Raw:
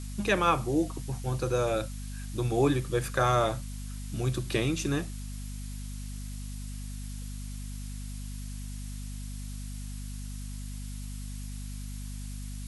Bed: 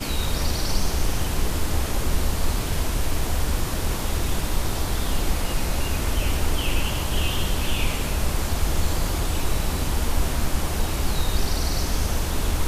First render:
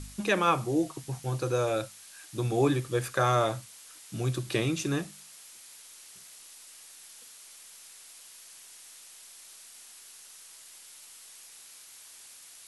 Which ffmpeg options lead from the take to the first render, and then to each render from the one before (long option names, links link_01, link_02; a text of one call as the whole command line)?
ffmpeg -i in.wav -af "bandreject=frequency=50:width_type=h:width=4,bandreject=frequency=100:width_type=h:width=4,bandreject=frequency=150:width_type=h:width=4,bandreject=frequency=200:width_type=h:width=4,bandreject=frequency=250:width_type=h:width=4" out.wav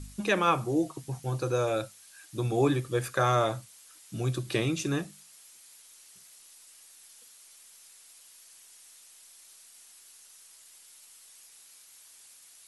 ffmpeg -i in.wav -af "afftdn=noise_reduction=6:noise_floor=-51" out.wav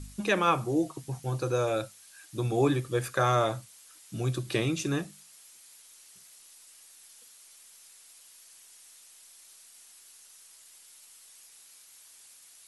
ffmpeg -i in.wav -af anull out.wav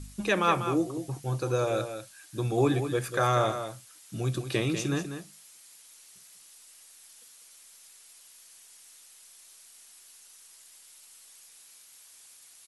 ffmpeg -i in.wav -af "aecho=1:1:194:0.355" out.wav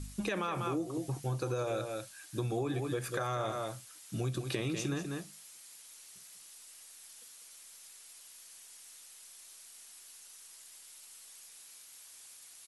ffmpeg -i in.wav -af "alimiter=limit=-18.5dB:level=0:latency=1,acompressor=threshold=-31dB:ratio=6" out.wav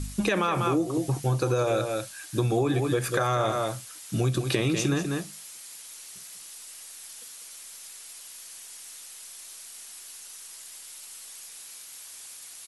ffmpeg -i in.wav -af "volume=9.5dB" out.wav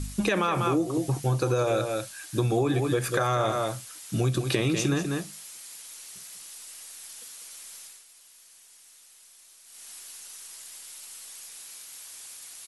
ffmpeg -i in.wav -filter_complex "[0:a]asplit=3[link_01][link_02][link_03];[link_01]atrim=end=8.05,asetpts=PTS-STARTPTS,afade=type=out:start_time=7.79:duration=0.26:silence=0.316228[link_04];[link_02]atrim=start=8.05:end=9.64,asetpts=PTS-STARTPTS,volume=-10dB[link_05];[link_03]atrim=start=9.64,asetpts=PTS-STARTPTS,afade=type=in:duration=0.26:silence=0.316228[link_06];[link_04][link_05][link_06]concat=n=3:v=0:a=1" out.wav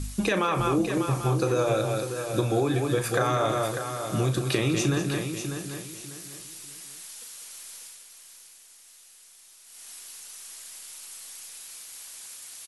ffmpeg -i in.wav -filter_complex "[0:a]asplit=2[link_01][link_02];[link_02]adelay=37,volume=-10.5dB[link_03];[link_01][link_03]amix=inputs=2:normalize=0,aecho=1:1:596|1192|1788:0.398|0.107|0.029" out.wav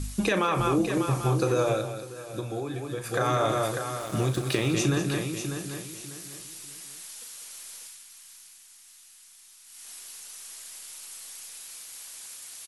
ffmpeg -i in.wav -filter_complex "[0:a]asettb=1/sr,asplit=3[link_01][link_02][link_03];[link_01]atrim=end=3.994[link_04];[link_02]atrim=start=3.99:end=4.73,asetpts=PTS-STARTPTS,afade=type=in:duration=0.004:curve=qsin,afade=type=out:start_time=0.736:duration=0.004:curve=qsin,aeval=exprs='sgn(val(0))*max(abs(val(0))-0.01,0)':channel_layout=same[link_05];[link_03]atrim=start=4.726[link_06];[link_04][link_05]acrossfade=duration=0.004:curve1=hsin:curve2=qsin[link_07];[link_07][link_06]acrossfade=duration=0.004:curve1=qsin:curve2=hsin,asettb=1/sr,asplit=3[link_08][link_09][link_10];[link_08]atrim=end=7.874[link_11];[link_09]atrim=start=7.87:end=9.85,asetpts=PTS-STARTPTS,afade=type=in:duration=0.004:curve=qsin,afade=type=out:start_time=1.976:duration=0.004:curve=qsin,equalizer=frequency=490:width_type=o:width=0.74:gain=-14.5[link_12];[link_10]atrim=start=9.846[link_13];[link_11][link_12]acrossfade=duration=0.004:curve1=hsin:curve2=qsin[link_14];[link_14][link_13]acrossfade=duration=0.004:curve1=qsin:curve2=hsin,asplit=3[link_15][link_16][link_17];[link_15]atrim=end=1.93,asetpts=PTS-STARTPTS,afade=type=out:start_time=1.66:duration=0.27:silence=0.375837[link_18];[link_16]atrim=start=1.93:end=3.02,asetpts=PTS-STARTPTS,volume=-8.5dB[link_19];[link_17]atrim=start=3.02,asetpts=PTS-STARTPTS,afade=type=in:duration=0.27:silence=0.375837[link_20];[link_18][link_19][link_20]concat=n=3:v=0:a=1" out.wav